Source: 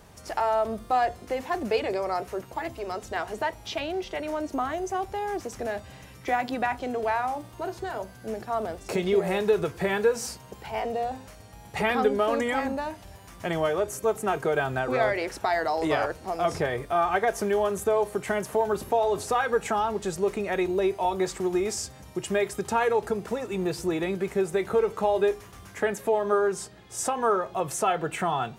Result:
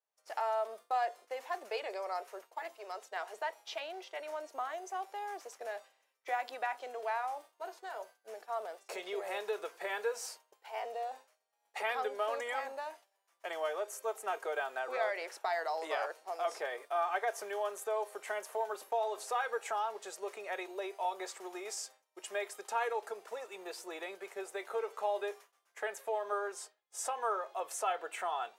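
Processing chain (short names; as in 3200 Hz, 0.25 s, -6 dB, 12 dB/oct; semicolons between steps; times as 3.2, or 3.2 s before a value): HPF 500 Hz 24 dB/oct; expander -38 dBFS; gain -8.5 dB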